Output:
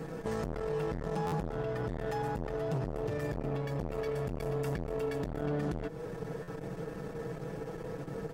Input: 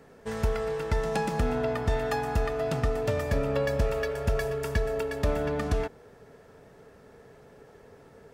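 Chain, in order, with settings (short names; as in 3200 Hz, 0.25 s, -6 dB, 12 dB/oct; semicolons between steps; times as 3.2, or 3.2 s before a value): limiter -28 dBFS, peak gain reduction 12 dB; low shelf 140 Hz -4.5 dB; hard clip -31 dBFS, distortion -23 dB; compressor 6:1, threshold -44 dBFS, peak gain reduction 10 dB; low shelf 440 Hz +11 dB; notch 640 Hz, Q 13; comb 6.2 ms, depth 79%; stuck buffer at 1.26/6.42, samples 512, times 4; core saturation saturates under 400 Hz; gain +7 dB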